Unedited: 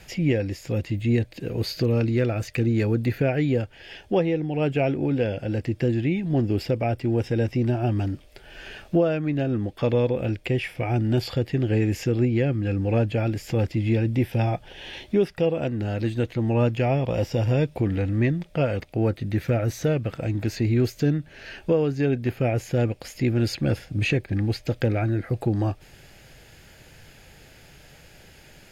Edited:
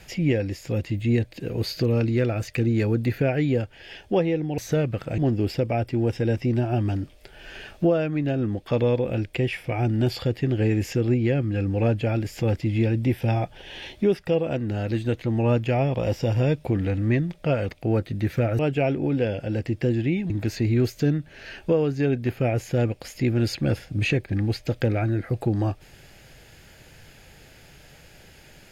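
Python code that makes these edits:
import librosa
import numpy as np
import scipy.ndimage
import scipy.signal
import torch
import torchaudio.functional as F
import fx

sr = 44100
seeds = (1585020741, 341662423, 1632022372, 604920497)

y = fx.edit(x, sr, fx.swap(start_s=4.58, length_s=1.71, other_s=19.7, other_length_s=0.6), tone=tone)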